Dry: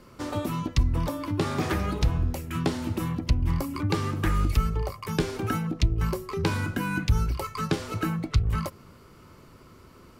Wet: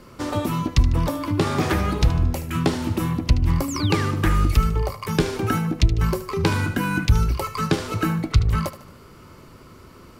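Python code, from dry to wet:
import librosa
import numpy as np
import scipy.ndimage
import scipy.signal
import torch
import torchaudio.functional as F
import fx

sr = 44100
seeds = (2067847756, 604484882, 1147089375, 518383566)

y = fx.echo_thinned(x, sr, ms=75, feedback_pct=45, hz=420.0, wet_db=-13)
y = fx.spec_paint(y, sr, seeds[0], shape='fall', start_s=3.68, length_s=0.38, low_hz=1400.0, high_hz=8200.0, level_db=-39.0)
y = F.gain(torch.from_numpy(y), 5.5).numpy()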